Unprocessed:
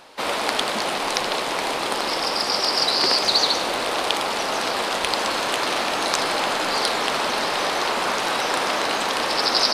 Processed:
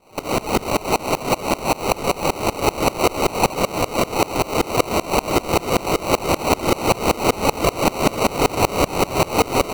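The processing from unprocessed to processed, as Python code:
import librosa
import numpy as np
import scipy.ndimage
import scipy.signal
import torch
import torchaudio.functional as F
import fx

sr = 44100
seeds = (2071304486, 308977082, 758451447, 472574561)

p1 = scipy.signal.sosfilt(scipy.signal.butter(4, 4200.0, 'lowpass', fs=sr, output='sos'), x)
p2 = fx.peak_eq(p1, sr, hz=1300.0, db=8.5, octaves=0.77)
p3 = fx.sample_hold(p2, sr, seeds[0], rate_hz=1700.0, jitter_pct=0)
p4 = fx.fold_sine(p3, sr, drive_db=10, ceiling_db=-1.5)
p5 = p3 + F.gain(torch.from_numpy(p4), -8.5).numpy()
y = fx.tremolo_decay(p5, sr, direction='swelling', hz=5.2, depth_db=26)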